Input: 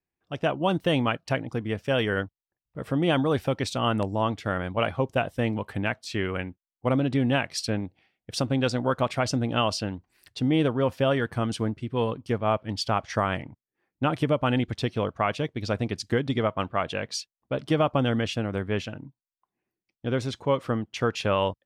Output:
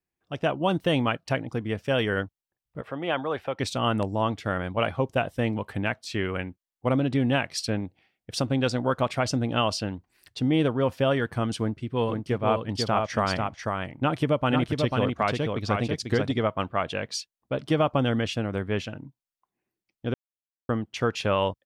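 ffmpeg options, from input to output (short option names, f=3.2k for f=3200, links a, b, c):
-filter_complex "[0:a]asettb=1/sr,asplit=3[a][b][c];[a]atrim=end=2.814[d];[b]atrim=start=2.81:end=3.59,asetpts=PTS-STARTPTS,afade=t=in:d=0.004:c=qsin,afade=t=out:st=0.776:d=0.004:c=qsin,acrossover=split=460 3300:gain=0.224 1 0.158[e][f][g];[e][f][g]amix=inputs=3:normalize=0[h];[c]atrim=start=3.586[i];[d][h]acrossfade=d=0.004:c1=hsin:c2=qsin[j];[j][i]acrossfade=d=0.004:c1=qsin:c2=hsin,asplit=3[k][l][m];[k]afade=t=out:st=12.07:d=0.02[n];[l]aecho=1:1:493:0.631,afade=t=in:st=12.07:d=0.02,afade=t=out:st=16.31:d=0.02[o];[m]afade=t=in:st=16.31:d=0.02[p];[n][o][p]amix=inputs=3:normalize=0,asplit=3[q][r][s];[q]atrim=end=20.14,asetpts=PTS-STARTPTS,afade=t=out:st=20.136:d=0.004:c=hsin[t];[r]atrim=start=20.14:end=20.69,asetpts=PTS-STARTPTS,volume=0[u];[s]atrim=start=20.69,asetpts=PTS-STARTPTS,afade=t=in:d=0.004:c=hsin[v];[t][u][v]concat=n=3:v=0:a=1"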